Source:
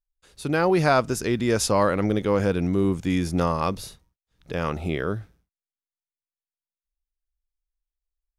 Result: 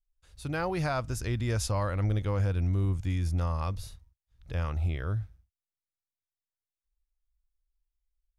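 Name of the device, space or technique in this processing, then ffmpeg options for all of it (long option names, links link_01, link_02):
car stereo with a boomy subwoofer: -af "lowshelf=frequency=130:width_type=q:width=1.5:gain=13,equalizer=frequency=410:width_type=o:width=0.44:gain=-6,alimiter=limit=-12.5dB:level=0:latency=1:release=291,volume=-8dB"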